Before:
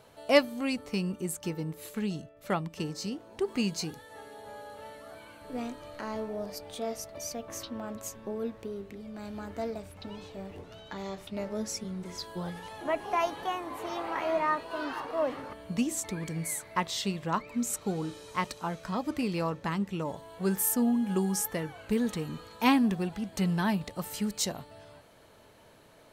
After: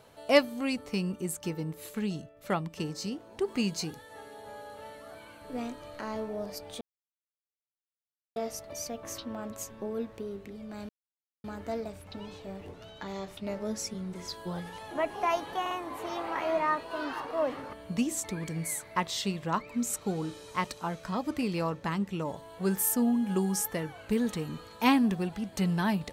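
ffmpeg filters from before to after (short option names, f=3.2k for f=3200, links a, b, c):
-filter_complex "[0:a]asplit=5[a][b][c][d][e];[a]atrim=end=6.81,asetpts=PTS-STARTPTS,afade=t=out:st=6.806:d=0.004:c=hsin,apad=pad_dur=1.55[f];[b]atrim=start=6.81:end=9.34,asetpts=PTS-STARTPTS,afade=t=in:d=0.004:c=hsin,afade=t=out:st=2.526:d=0.004:c=hsin,apad=pad_dur=0.55[g];[c]atrim=start=9.34:end=13.562,asetpts=PTS-STARTPTS,afade=t=in:d=0.004:c=hsin[h];[d]atrim=start=13.508:end=13.562[i];[e]atrim=start=13.508[j];[f][g][h]concat=n=3:v=0:a=1[k];[k][i]acrossfade=d=0.004:c1=hsin:c2=hsin[l];[l][j]acrossfade=d=0.004:c1=hsin:c2=hsin"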